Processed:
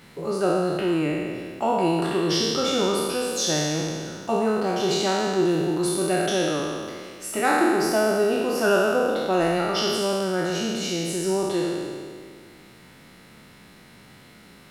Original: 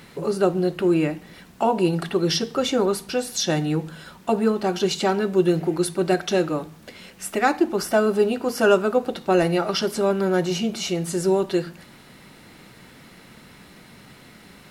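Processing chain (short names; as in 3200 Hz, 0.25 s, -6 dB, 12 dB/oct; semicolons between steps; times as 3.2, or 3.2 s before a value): spectral trails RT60 2.04 s; gain -5.5 dB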